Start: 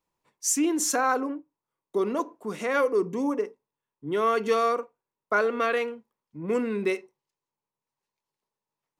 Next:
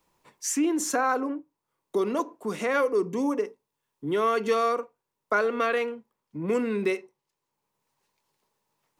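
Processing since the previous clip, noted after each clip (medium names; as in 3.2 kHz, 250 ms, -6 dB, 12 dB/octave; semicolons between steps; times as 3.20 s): three bands compressed up and down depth 40%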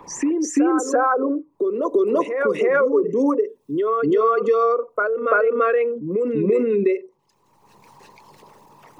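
resonances exaggerated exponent 2; reverse echo 339 ms -8 dB; three bands compressed up and down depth 70%; trim +7 dB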